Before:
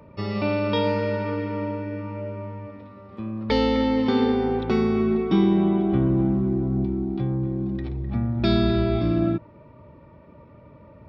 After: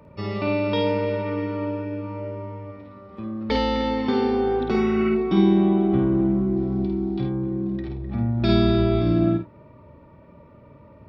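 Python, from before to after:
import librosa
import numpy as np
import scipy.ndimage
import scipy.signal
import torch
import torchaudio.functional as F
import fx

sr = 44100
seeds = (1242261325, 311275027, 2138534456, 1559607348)

p1 = fx.spec_repair(x, sr, seeds[0], start_s=4.78, length_s=0.3, low_hz=1300.0, high_hz=3000.0, source='before')
p2 = fx.peak_eq(p1, sr, hz=4400.0, db=9.0, octaves=1.5, at=(6.56, 7.24))
p3 = p2 + fx.room_early_taps(p2, sr, ms=(51, 79), db=(-4.5, -16.0), dry=0)
y = p3 * librosa.db_to_amplitude(-1.5)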